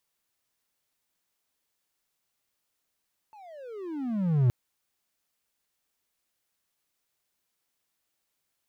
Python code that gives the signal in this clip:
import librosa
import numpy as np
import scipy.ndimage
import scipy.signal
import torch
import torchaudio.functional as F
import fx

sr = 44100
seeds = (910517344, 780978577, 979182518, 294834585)

y = fx.riser_tone(sr, length_s=1.17, level_db=-15.5, wave='triangle', hz=887.0, rise_st=-35.0, swell_db=30)